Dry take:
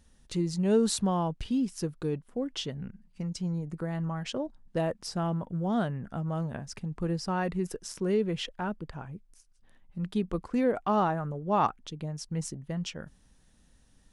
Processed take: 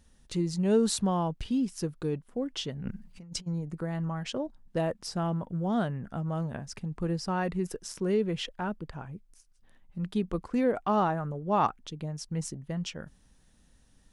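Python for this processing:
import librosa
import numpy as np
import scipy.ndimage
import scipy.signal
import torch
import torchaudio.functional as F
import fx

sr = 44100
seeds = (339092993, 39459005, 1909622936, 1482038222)

y = fx.over_compress(x, sr, threshold_db=-40.0, ratio=-0.5, at=(2.81, 3.46), fade=0.02)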